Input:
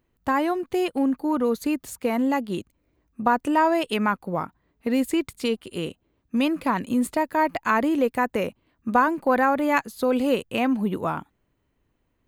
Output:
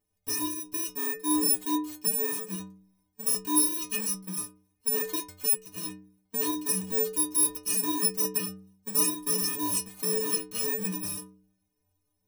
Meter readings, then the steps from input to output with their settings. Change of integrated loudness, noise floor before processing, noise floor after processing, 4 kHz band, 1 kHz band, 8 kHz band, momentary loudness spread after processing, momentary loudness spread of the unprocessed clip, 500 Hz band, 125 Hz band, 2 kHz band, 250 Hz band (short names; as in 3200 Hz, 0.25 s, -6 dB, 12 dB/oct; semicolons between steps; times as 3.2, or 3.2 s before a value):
-2.5 dB, -72 dBFS, -78 dBFS, +2.0 dB, -15.0 dB, +16.5 dB, 11 LU, 10 LU, -11.5 dB, -6.0 dB, -12.5 dB, -10.5 dB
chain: FFT order left unsorted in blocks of 64 samples; notch 1400 Hz, Q 9.3; metallic resonator 90 Hz, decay 0.76 s, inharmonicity 0.03; gain +6.5 dB